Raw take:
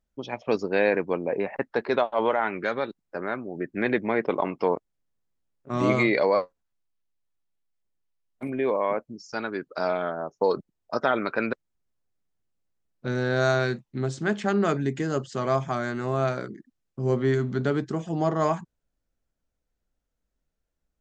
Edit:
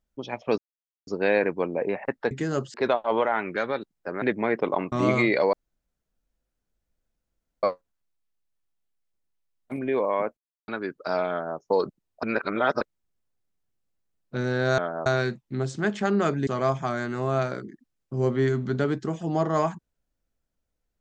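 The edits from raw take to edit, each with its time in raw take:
0.58 s: insert silence 0.49 s
3.30–3.88 s: delete
4.58–5.73 s: delete
6.34 s: insert room tone 2.10 s
9.08–9.39 s: mute
10.01–10.29 s: copy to 13.49 s
10.94–11.52 s: reverse
14.90–15.33 s: move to 1.82 s

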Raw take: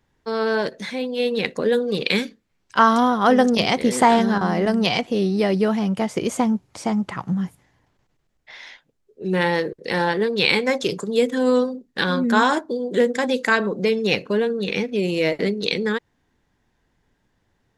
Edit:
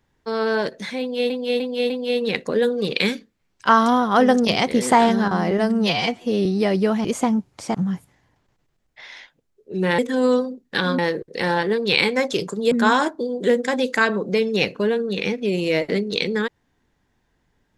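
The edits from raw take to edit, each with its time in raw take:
1.00–1.30 s: loop, 4 plays
4.61–5.24 s: stretch 1.5×
5.83–6.21 s: delete
6.91–7.25 s: delete
11.22–12.22 s: move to 9.49 s

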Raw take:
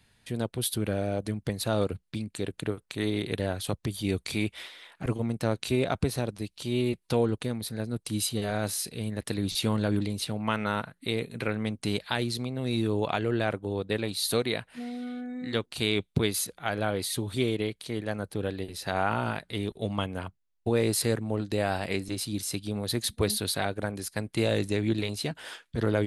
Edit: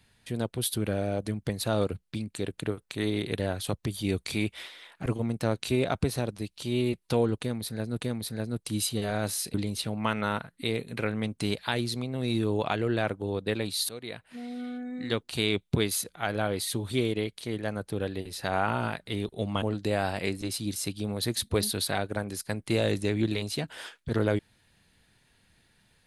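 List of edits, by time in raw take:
7.41–8.01 s: loop, 2 plays
8.94–9.97 s: delete
14.32–15.05 s: fade in, from -19 dB
20.05–21.29 s: delete

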